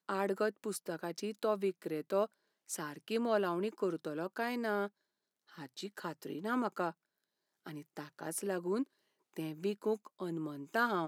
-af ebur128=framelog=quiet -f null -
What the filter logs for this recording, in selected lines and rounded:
Integrated loudness:
  I:         -37.5 LUFS
  Threshold: -48.0 LUFS
Loudness range:
  LRA:         4.7 LU
  Threshold: -58.6 LUFS
  LRA low:   -41.2 LUFS
  LRA high:  -36.6 LUFS